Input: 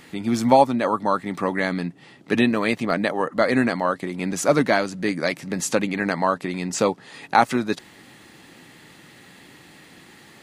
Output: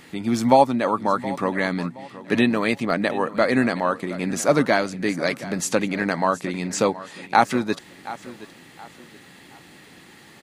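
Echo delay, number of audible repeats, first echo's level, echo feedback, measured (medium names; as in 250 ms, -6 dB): 721 ms, 2, -16.5 dB, 33%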